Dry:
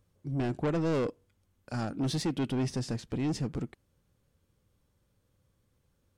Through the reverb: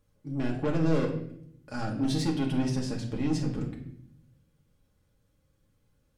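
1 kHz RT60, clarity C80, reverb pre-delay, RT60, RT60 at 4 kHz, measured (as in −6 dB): 0.60 s, 10.5 dB, 4 ms, 0.65 s, 0.60 s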